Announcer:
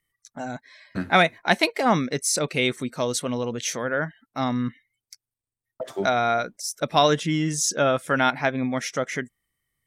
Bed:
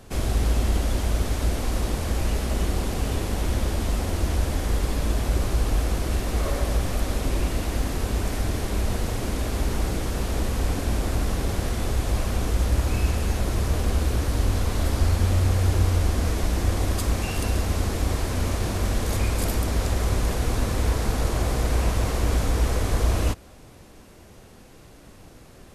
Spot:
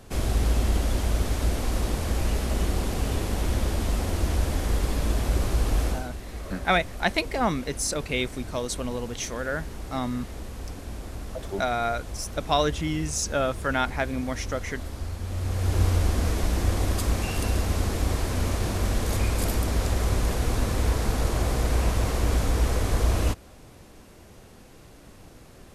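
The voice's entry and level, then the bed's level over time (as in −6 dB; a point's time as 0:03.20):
5.55 s, −4.5 dB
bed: 0:05.88 −1 dB
0:06.11 −12 dB
0:15.22 −12 dB
0:15.82 −1 dB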